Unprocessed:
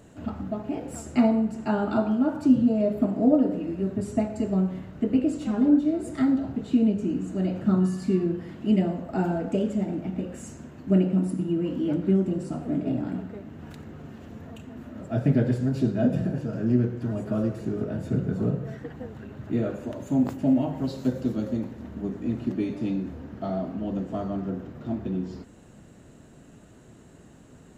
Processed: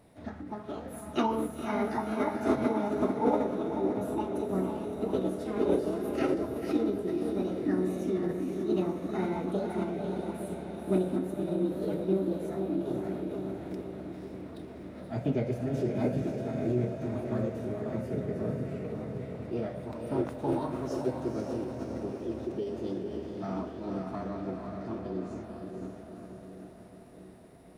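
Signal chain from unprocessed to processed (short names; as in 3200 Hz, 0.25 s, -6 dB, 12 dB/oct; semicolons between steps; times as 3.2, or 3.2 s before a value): diffused feedback echo 0.52 s, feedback 61%, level -4 dB; formant shift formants +5 st; gain -8 dB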